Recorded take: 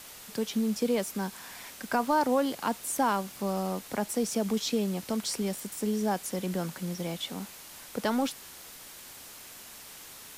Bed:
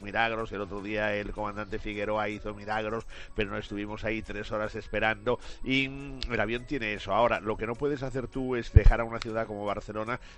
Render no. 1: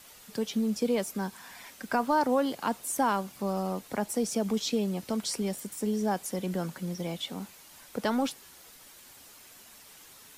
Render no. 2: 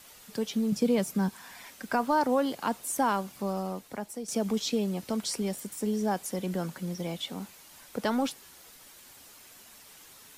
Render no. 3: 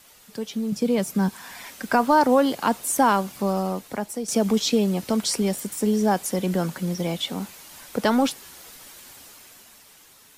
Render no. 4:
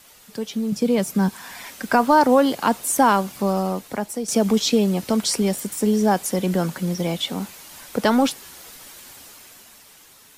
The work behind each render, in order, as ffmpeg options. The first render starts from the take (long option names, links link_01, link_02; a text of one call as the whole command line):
ffmpeg -i in.wav -af "afftdn=noise_reduction=7:noise_floor=-48" out.wav
ffmpeg -i in.wav -filter_complex "[0:a]asettb=1/sr,asplit=3[link_01][link_02][link_03];[link_01]atrim=end=0.724[link_04];[link_02]atrim=start=0.72:end=1.29,asetpts=PTS-STARTPTS,afade=type=in:duration=0.004:curve=qsin,afade=type=out:start_time=0.566:duration=0.004:curve=qsin,equalizer=frequency=150:width=1.5:gain=11.5[link_05];[link_03]atrim=start=1.286[link_06];[link_04][link_05]acrossfade=duration=0.004:curve1=hsin:curve2=qsin[link_07];[link_07][link_06]acrossfade=duration=0.004:curve1=qsin:curve2=hsin,asplit=2[link_08][link_09];[link_08]atrim=end=4.28,asetpts=PTS-STARTPTS,afade=type=out:start_time=3.38:duration=0.9:silence=0.281838[link_10];[link_09]atrim=start=4.28,asetpts=PTS-STARTPTS,afade=type=in:duration=0.004:curve=hsin:silence=0.281838[link_11];[link_10][link_11]concat=n=2:v=0:a=1" out.wav
ffmpeg -i in.wav -af "dynaudnorm=framelen=130:gausssize=17:maxgain=8dB" out.wav
ffmpeg -i in.wav -af "volume=2.5dB" out.wav